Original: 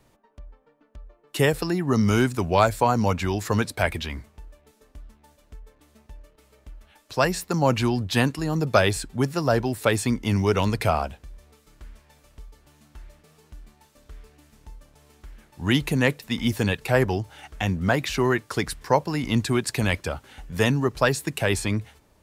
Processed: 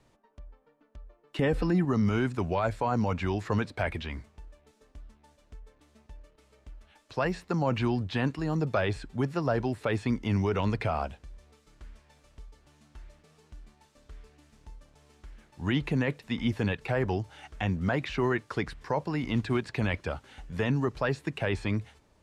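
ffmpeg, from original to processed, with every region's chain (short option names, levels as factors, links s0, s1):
-filter_complex "[0:a]asettb=1/sr,asplit=3[s0][s1][s2];[s0]atrim=end=1.394[s3];[s1]atrim=start=1.39:end=1.85,asetpts=PTS-STARTPTS,afade=t=in:d=0.004:c=qsin,afade=t=out:st=0.456:d=0.004:c=qsin,aecho=1:1:3.9:0.52,atrim=end_sample=20286,acompressor=mode=upward:threshold=0.0562:ratio=2.5:attack=3.2:release=140:knee=2.83:detection=peak,lowshelf=f=290:g=9.5[s4];[s2]atrim=start=1.846[s5];[s3][s4]acrossfade=d=0.004:c1=hsin:c2=qsin[s6];[s6][s5]acrossfade=d=0.004:c1=qsin:c2=hsin,asettb=1/sr,asplit=3[s7][s8][s9];[s7]atrim=end=19.214[s10];[s8]atrim=start=19.21:end=19.69,asetpts=PTS-STARTPTS,afade=t=in:d=0.004:c=qsin,afade=t=out:st=0.476:d=0.004:c=qsin,bandreject=f=50:t=h:w=6,bandreject=f=100:t=h:w=6,bandreject=f=150:t=h:w=6,bandreject=f=200:t=h:w=6,asubboost=boost=8.5:cutoff=83,acrusher=bits=6:mode=log:mix=0:aa=0.000001[s11];[s9]atrim=start=19.686[s12];[s10][s11]acrossfade=d=0.004:c1=hsin:c2=qsin[s13];[s13][s12]acrossfade=d=0.004:c1=qsin:c2=hsin,acrossover=split=3400[s14][s15];[s15]acompressor=threshold=0.00355:ratio=4:attack=1:release=60[s16];[s14][s16]amix=inputs=2:normalize=0,lowpass=8200,alimiter=limit=0.211:level=0:latency=1:release=14,volume=0.631"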